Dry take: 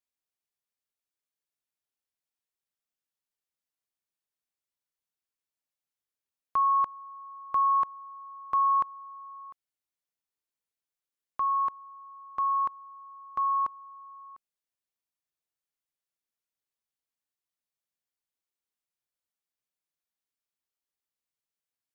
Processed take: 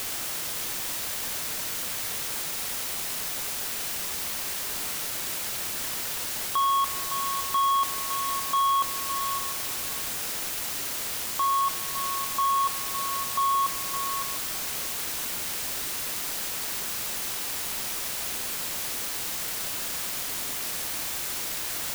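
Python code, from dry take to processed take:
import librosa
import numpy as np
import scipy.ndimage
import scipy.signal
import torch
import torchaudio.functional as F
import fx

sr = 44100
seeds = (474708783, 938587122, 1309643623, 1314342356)

p1 = fx.quant_dither(x, sr, seeds[0], bits=6, dither='triangular')
p2 = np.clip(p1, -10.0 ** (-25.5 / 20.0), 10.0 ** (-25.5 / 20.0))
p3 = p2 + fx.echo_single(p2, sr, ms=561, db=-10.5, dry=0)
y = p3 * librosa.db_to_amplitude(4.0)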